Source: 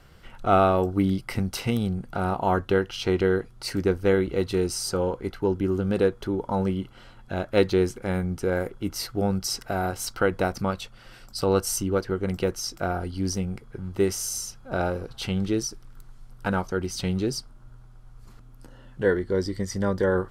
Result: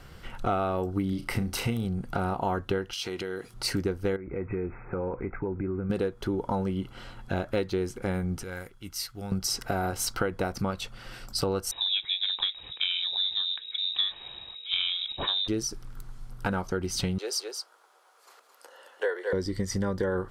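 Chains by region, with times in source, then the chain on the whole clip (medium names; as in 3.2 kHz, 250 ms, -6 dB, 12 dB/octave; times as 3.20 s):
1.09–1.85 s: flutter echo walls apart 6 m, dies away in 0.22 s + dynamic bell 5 kHz, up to -4 dB, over -46 dBFS, Q 1.3
2.93–3.54 s: treble shelf 2.9 kHz +10 dB + compression 12:1, threshold -32 dBFS + high-pass 260 Hz 6 dB/octave
4.16–5.90 s: brick-wall FIR low-pass 2.6 kHz + compression 4:1, threshold -33 dBFS
8.43–9.32 s: amplifier tone stack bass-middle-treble 5-5-5 + short-mantissa float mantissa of 6-bit
11.71–15.48 s: frequency inversion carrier 3.8 kHz + tape noise reduction on one side only decoder only
17.18–19.33 s: steep high-pass 460 Hz + delay 217 ms -7.5 dB
whole clip: band-stop 620 Hz, Q 19; compression 6:1, threshold -30 dBFS; trim +4.5 dB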